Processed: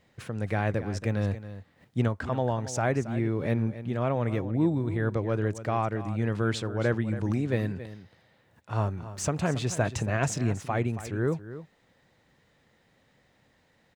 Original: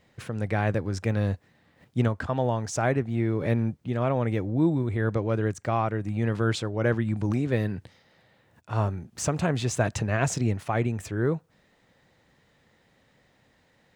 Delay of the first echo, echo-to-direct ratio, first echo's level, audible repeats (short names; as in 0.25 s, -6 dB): 0.276 s, -13.5 dB, -13.5 dB, 1